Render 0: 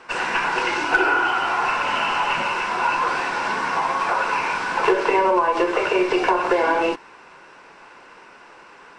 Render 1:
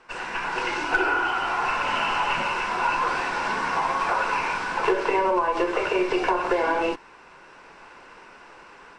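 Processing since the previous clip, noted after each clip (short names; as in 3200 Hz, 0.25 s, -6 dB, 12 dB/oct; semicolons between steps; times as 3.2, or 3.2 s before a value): low shelf 69 Hz +11 dB; AGC gain up to 7.5 dB; gain -9 dB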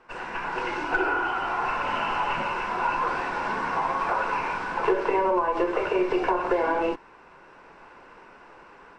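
high shelf 2400 Hz -11 dB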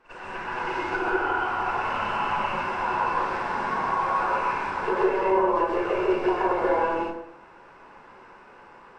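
reverse echo 52 ms -15 dB; plate-style reverb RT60 0.74 s, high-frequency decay 0.6×, pre-delay 0.115 s, DRR -4 dB; gain -5.5 dB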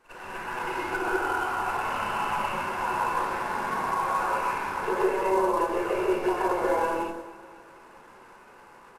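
CVSD 64 kbps; feedback echo 0.249 s, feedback 57%, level -19 dB; gain -2 dB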